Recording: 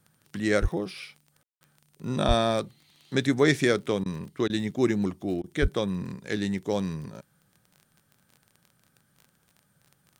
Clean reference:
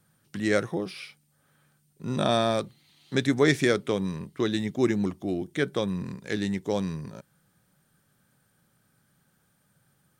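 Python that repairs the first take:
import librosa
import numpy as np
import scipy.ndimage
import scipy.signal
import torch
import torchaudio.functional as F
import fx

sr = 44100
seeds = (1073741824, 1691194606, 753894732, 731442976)

y = fx.fix_declick_ar(x, sr, threshold=6.5)
y = fx.highpass(y, sr, hz=140.0, slope=24, at=(0.61, 0.73), fade=0.02)
y = fx.highpass(y, sr, hz=140.0, slope=24, at=(2.27, 2.39), fade=0.02)
y = fx.highpass(y, sr, hz=140.0, slope=24, at=(5.61, 5.73), fade=0.02)
y = fx.fix_ambience(y, sr, seeds[0], print_start_s=9.26, print_end_s=9.76, start_s=1.43, end_s=1.61)
y = fx.fix_interpolate(y, sr, at_s=(1.56, 4.04, 4.48, 5.42), length_ms=17.0)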